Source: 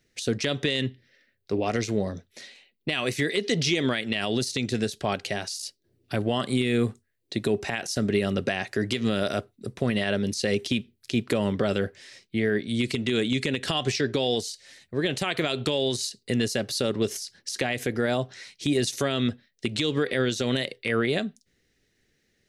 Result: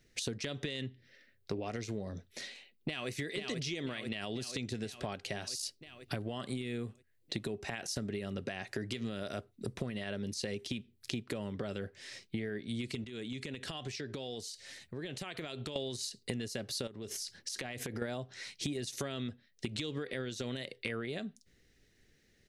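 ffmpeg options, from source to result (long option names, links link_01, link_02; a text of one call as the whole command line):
ffmpeg -i in.wav -filter_complex "[0:a]asplit=2[link_01][link_02];[link_02]afade=type=in:start_time=2.43:duration=0.01,afade=type=out:start_time=3.1:duration=0.01,aecho=0:1:490|980|1470|1960|2450|2940|3430|3920|4410:0.630957|0.378574|0.227145|0.136287|0.0817721|0.0490632|0.0294379|0.0176628|0.0105977[link_03];[link_01][link_03]amix=inputs=2:normalize=0,asettb=1/sr,asplit=3[link_04][link_05][link_06];[link_04]atrim=end=13.044[link_07];[link_05]atrim=start=13.04:end=15.76,asetpts=PTS-STARTPTS,afade=type=in:duration=0.004:curve=qsin,afade=type=out:start_time=2.716:duration=0.004:curve=qsin,acompressor=threshold=-43dB:ratio=3:attack=3.2:release=140:knee=1:detection=peak[link_08];[link_06]atrim=start=15.756[link_09];[link_07][link_08]acrossfade=duration=0.004:curve1=hsin:curve2=qsin[link_10];[link_10][link_09]acrossfade=duration=0.004:curve1=qsin:curve2=hsin,asettb=1/sr,asplit=3[link_11][link_12][link_13];[link_11]atrim=end=16.874[link_14];[link_12]atrim=start=16.87:end=18.02,asetpts=PTS-STARTPTS,afade=type=in:duration=0.004:curve=qsin,afade=type=out:start_time=1.146:duration=0.004:curve=qsin,acompressor=threshold=-35dB:ratio=10:attack=3.2:release=140:knee=1:detection=peak[link_15];[link_13]atrim=start=18.016[link_16];[link_14][link_15]acrossfade=duration=0.004:curve1=hsin:curve2=qsin[link_17];[link_17][link_16]acrossfade=duration=0.004:curve1=qsin:curve2=hsin,lowshelf=frequency=86:gain=7,acompressor=threshold=-34dB:ratio=16" out.wav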